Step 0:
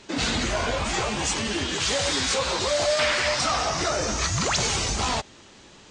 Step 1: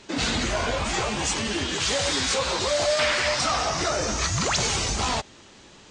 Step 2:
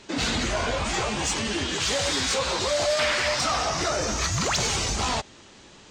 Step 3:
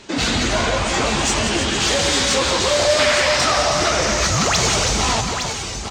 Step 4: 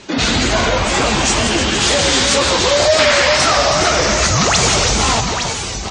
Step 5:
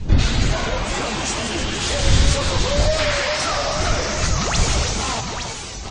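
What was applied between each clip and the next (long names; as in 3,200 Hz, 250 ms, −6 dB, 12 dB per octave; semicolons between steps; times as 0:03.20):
no processing that can be heard
soft clipping −14 dBFS, distortion −25 dB
multi-tap delay 173/317/861 ms −8.5/−8.5/−7 dB; level +6 dB
tape wow and flutter 73 cents; gate on every frequency bin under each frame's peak −30 dB strong; level +4 dB
wind on the microphone 83 Hz −13 dBFS; level −8.5 dB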